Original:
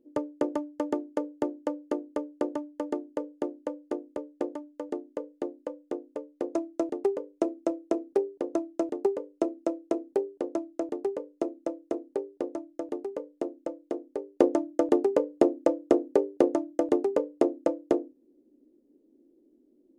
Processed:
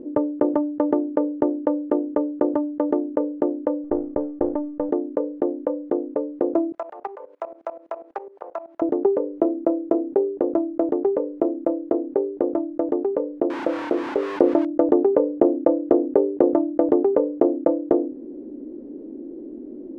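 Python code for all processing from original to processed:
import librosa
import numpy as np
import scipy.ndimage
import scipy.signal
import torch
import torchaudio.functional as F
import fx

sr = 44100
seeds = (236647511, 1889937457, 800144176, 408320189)

y = fx.chain(x, sr, fx.halfwave_gain(db=-3.0),
    fx.lowpass(hz=1900.0, slope=6), at=(3.84, 4.89))
y = fx.chain(y, sr, fx.highpass(hz=860.0, slope=24),
    fx.level_steps(step_db=22), at=(6.72, 8.82))
y = fx.chain(y, sr, fx.crossing_spikes(level_db=-19.5),
    fx.high_shelf(hz=5400.0, db=-7.0), at=(13.5, 14.65))
y = scipy.signal.sosfilt(scipy.signal.butter(2, 1200.0, 'lowpass', fs=sr, output='sos'), y)
y = fx.env_flatten(y, sr, amount_pct=50)
y = F.gain(torch.from_numpy(y), 3.5).numpy()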